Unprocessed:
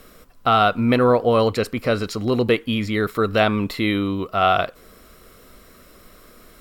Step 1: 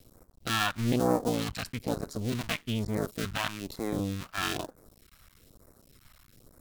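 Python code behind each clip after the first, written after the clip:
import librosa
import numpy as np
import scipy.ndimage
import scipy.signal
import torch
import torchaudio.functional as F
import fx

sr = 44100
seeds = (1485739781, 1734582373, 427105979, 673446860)

y = fx.cycle_switch(x, sr, every=2, mode='muted')
y = fx.phaser_stages(y, sr, stages=2, low_hz=390.0, high_hz=2900.0, hz=1.1, feedback_pct=25)
y = y * librosa.db_to_amplitude(-6.5)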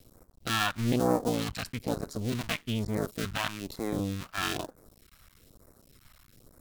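y = x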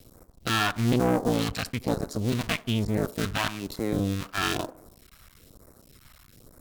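y = fx.tube_stage(x, sr, drive_db=22.0, bias=0.45)
y = fx.echo_wet_bandpass(y, sr, ms=76, feedback_pct=48, hz=570.0, wet_db=-17.0)
y = y * librosa.db_to_amplitude(6.5)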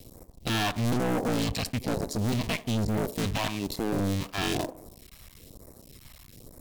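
y = fx.peak_eq(x, sr, hz=1400.0, db=-11.5, octaves=0.51)
y = np.clip(10.0 ** (27.5 / 20.0) * y, -1.0, 1.0) / 10.0 ** (27.5 / 20.0)
y = y * librosa.db_to_amplitude(4.0)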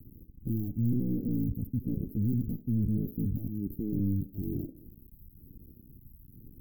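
y = scipy.signal.sosfilt(scipy.signal.cheby2(4, 60, [930.0, 6900.0], 'bandstop', fs=sr, output='sos'), x)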